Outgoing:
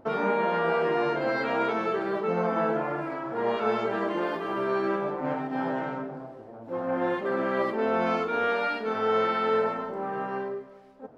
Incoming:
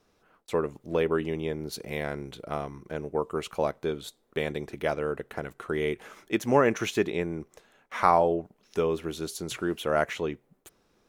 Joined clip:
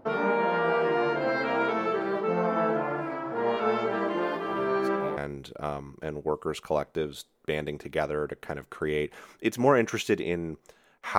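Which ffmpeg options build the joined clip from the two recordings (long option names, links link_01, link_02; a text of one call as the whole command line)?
ffmpeg -i cue0.wav -i cue1.wav -filter_complex "[1:a]asplit=2[link_01][link_02];[0:a]apad=whole_dur=11.18,atrim=end=11.18,atrim=end=5.172[link_03];[link_02]atrim=start=2.048:end=8.06[link_04];[link_01]atrim=start=1.38:end=2.05,asetpts=PTS-STARTPTS,volume=-14.5dB,afade=type=in:duration=0.004:curve=hsin,afade=type=out:start_time=0.666:duration=0.004:curve=hsin,adelay=4500[link_05];[link_03][link_04]acrossfade=duration=0.004:curve1=hsin:curve2=hsin[link_06];[link_06][link_05]amix=inputs=2:normalize=0" out.wav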